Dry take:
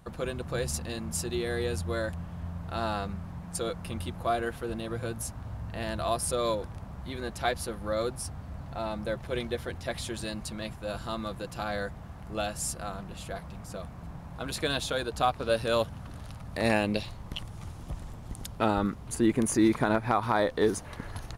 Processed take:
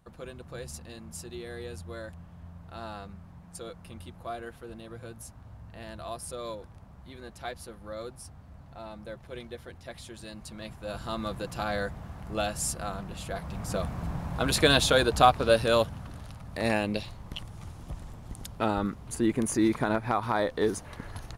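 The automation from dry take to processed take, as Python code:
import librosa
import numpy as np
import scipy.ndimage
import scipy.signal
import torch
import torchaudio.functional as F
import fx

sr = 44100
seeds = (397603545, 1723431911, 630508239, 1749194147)

y = fx.gain(x, sr, db=fx.line((10.17, -9.0), (11.28, 2.0), (13.31, 2.0), (13.74, 8.5), (15.06, 8.5), (16.34, -1.5)))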